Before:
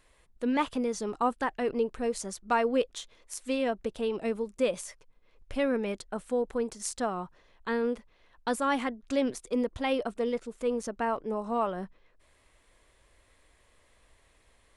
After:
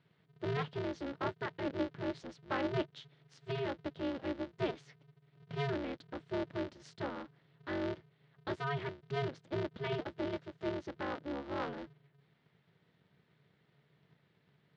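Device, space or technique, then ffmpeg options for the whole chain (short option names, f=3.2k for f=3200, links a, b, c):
ring modulator pedal into a guitar cabinet: -af "aeval=exprs='val(0)*sgn(sin(2*PI*140*n/s))':c=same,highpass=110,equalizer=f=150:t=q:w=4:g=6,equalizer=f=290:t=q:w=4:g=4,equalizer=f=750:t=q:w=4:g=-5,equalizer=f=1.1k:t=q:w=4:g=-5,equalizer=f=2.5k:t=q:w=4:g=-4,lowpass=f=4.1k:w=0.5412,lowpass=f=4.1k:w=1.3066,volume=-7.5dB"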